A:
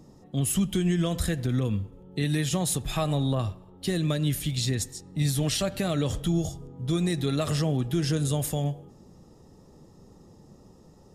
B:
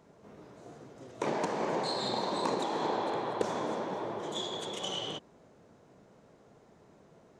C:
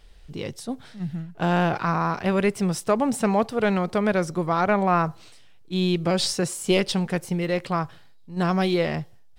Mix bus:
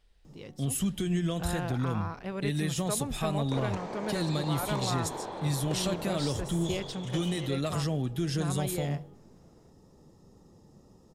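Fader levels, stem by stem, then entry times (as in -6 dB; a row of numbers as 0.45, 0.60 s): -4.5, -6.5, -14.0 dB; 0.25, 2.30, 0.00 s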